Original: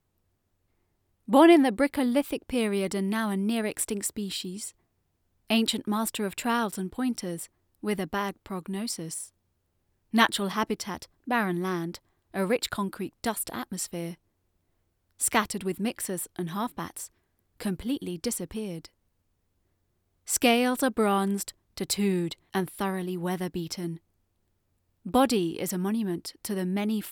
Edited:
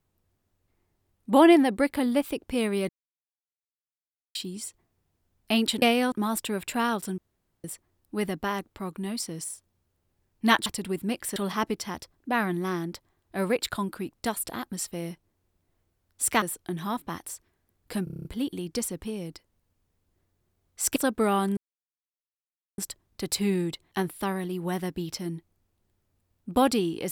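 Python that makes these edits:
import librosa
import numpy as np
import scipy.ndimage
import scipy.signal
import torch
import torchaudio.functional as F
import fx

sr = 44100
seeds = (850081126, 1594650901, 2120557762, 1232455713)

y = fx.edit(x, sr, fx.silence(start_s=2.89, length_s=1.46),
    fx.room_tone_fill(start_s=6.88, length_s=0.46),
    fx.move(start_s=15.42, length_s=0.7, to_s=10.36),
    fx.stutter(start_s=17.74, slice_s=0.03, count=8),
    fx.move(start_s=20.45, length_s=0.3, to_s=5.82),
    fx.insert_silence(at_s=21.36, length_s=1.21), tone=tone)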